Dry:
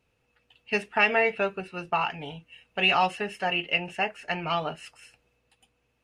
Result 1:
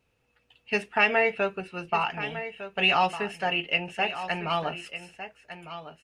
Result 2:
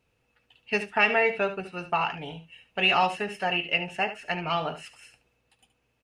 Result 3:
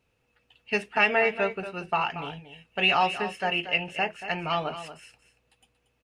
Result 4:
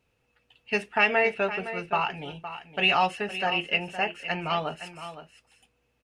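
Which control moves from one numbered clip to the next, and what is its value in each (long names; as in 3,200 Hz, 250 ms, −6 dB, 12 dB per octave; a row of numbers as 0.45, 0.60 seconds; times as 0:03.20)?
single-tap delay, delay time: 1,204, 73, 232, 514 milliseconds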